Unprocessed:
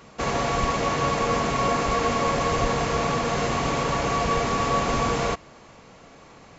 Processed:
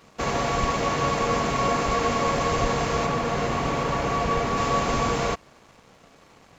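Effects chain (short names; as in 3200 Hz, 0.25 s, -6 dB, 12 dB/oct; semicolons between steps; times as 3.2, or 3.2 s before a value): 3.06–4.57 high shelf 3800 Hz -6.5 dB; crossover distortion -52.5 dBFS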